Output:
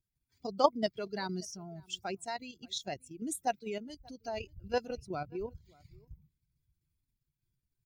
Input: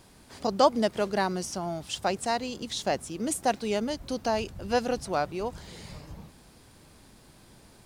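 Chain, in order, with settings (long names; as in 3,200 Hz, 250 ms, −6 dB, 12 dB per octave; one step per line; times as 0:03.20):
spectral dynamics exaggerated over time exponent 2
0:00.84–0:01.50: parametric band 4,400 Hz +10.5 dB 0.57 octaves
0:03.78–0:04.28: downward compressor 10 to 1, threshold −39 dBFS, peak gain reduction 7 dB
0:04.98–0:05.65: graphic EQ with 15 bands 100 Hz +7 dB, 250 Hz +9 dB, 1,600 Hz −6 dB, 10,000 Hz −4 dB
output level in coarse steps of 9 dB
slap from a distant wall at 100 metres, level −26 dB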